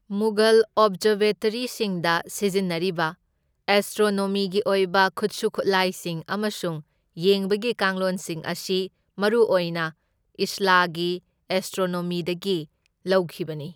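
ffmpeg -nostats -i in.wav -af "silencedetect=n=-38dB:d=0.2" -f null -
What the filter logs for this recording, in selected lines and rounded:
silence_start: 3.13
silence_end: 3.68 | silence_duration: 0.55
silence_start: 6.81
silence_end: 7.17 | silence_duration: 0.36
silence_start: 8.87
silence_end: 9.18 | silence_duration: 0.31
silence_start: 9.90
silence_end: 10.39 | silence_duration: 0.48
silence_start: 11.18
silence_end: 11.50 | silence_duration: 0.32
silence_start: 12.64
silence_end: 13.06 | silence_duration: 0.41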